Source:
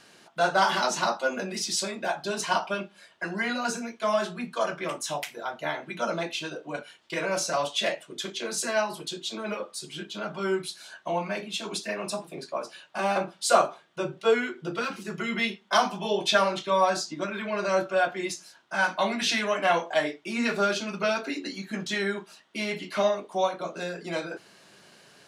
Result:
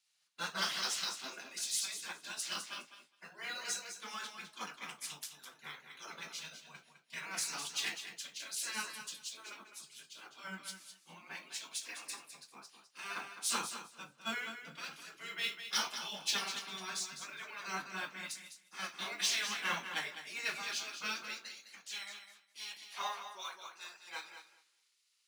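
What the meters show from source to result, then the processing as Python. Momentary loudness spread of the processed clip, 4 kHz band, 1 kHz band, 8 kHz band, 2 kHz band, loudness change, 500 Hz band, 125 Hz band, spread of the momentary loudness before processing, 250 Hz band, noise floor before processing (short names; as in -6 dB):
16 LU, -6.5 dB, -17.0 dB, -4.5 dB, -11.0 dB, -11.5 dB, -27.5 dB, -19.5 dB, 11 LU, -21.5 dB, -56 dBFS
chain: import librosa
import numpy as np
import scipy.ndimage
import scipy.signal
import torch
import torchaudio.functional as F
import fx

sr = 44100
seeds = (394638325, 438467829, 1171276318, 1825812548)

p1 = fx.filter_sweep_highpass(x, sr, from_hz=230.0, to_hz=730.0, start_s=20.78, end_s=22.08, q=2.6)
p2 = fx.spec_gate(p1, sr, threshold_db=-10, keep='weak')
p3 = fx.tone_stack(p2, sr, knobs='5-5-5')
p4 = np.clip(p3, -10.0 ** (-39.0 / 20.0), 10.0 ** (-39.0 / 20.0))
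p5 = p3 + (p4 * 10.0 ** (-5.0 / 20.0))
p6 = fx.mod_noise(p5, sr, seeds[0], snr_db=22)
p7 = scipy.signal.sosfilt(scipy.signal.butter(2, 79.0, 'highpass', fs=sr, output='sos'), p6)
p8 = p7 + fx.echo_feedback(p7, sr, ms=208, feedback_pct=26, wet_db=-6.5, dry=0)
p9 = fx.band_widen(p8, sr, depth_pct=70)
y = p9 * 10.0 ** (-1.5 / 20.0)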